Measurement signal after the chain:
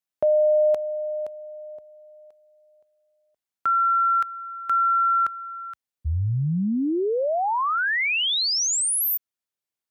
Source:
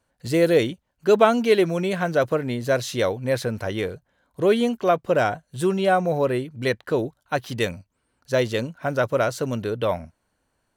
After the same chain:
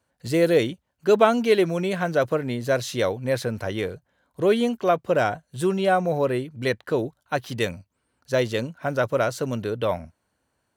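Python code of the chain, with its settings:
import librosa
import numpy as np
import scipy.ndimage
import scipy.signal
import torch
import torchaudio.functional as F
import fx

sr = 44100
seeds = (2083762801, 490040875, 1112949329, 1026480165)

y = scipy.signal.sosfilt(scipy.signal.butter(4, 52.0, 'highpass', fs=sr, output='sos'), x)
y = y * 10.0 ** (-1.0 / 20.0)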